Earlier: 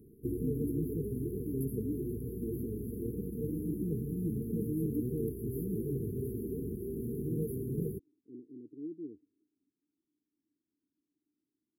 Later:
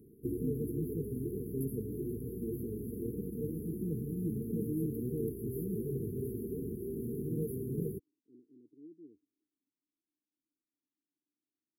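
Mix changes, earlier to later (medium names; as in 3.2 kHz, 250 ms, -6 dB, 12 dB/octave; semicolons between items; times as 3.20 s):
speech -10.5 dB; master: add bass shelf 64 Hz -8.5 dB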